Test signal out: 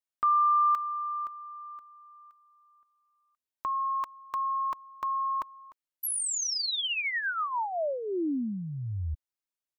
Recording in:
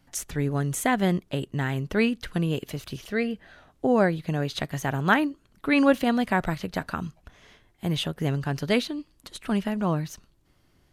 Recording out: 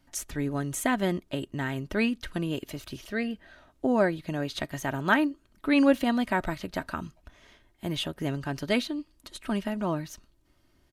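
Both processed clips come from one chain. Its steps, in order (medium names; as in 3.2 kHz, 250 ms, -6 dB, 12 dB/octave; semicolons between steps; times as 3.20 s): comb 3.2 ms, depth 41%; trim -3 dB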